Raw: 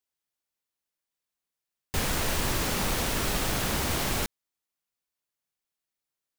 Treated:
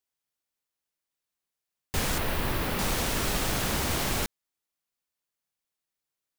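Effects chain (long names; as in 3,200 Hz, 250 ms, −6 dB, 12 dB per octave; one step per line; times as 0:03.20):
0:02.18–0:02.79: parametric band 6,900 Hz −12 dB 1.2 octaves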